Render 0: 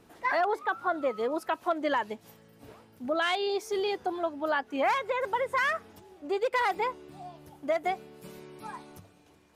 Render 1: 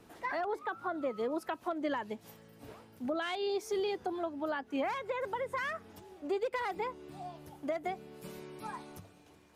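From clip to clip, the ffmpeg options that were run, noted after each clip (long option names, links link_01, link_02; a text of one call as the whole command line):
ffmpeg -i in.wav -filter_complex "[0:a]acrossover=split=340[link_01][link_02];[link_02]acompressor=threshold=-38dB:ratio=2.5[link_03];[link_01][link_03]amix=inputs=2:normalize=0" out.wav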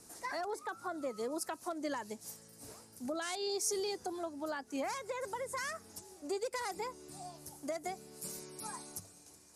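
ffmpeg -i in.wav -af "lowpass=frequency=11000:width=0.5412,lowpass=frequency=11000:width=1.3066,aexciter=amount=4.5:drive=9.3:freq=4700,volume=-4dB" out.wav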